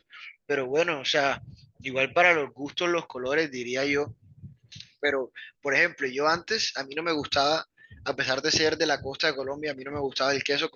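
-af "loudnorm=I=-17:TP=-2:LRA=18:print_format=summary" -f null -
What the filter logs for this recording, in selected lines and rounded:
Input Integrated:    -26.3 LUFS
Input True Peak:      -6.7 dBTP
Input LRA:             2.2 LU
Input Threshold:     -36.7 LUFS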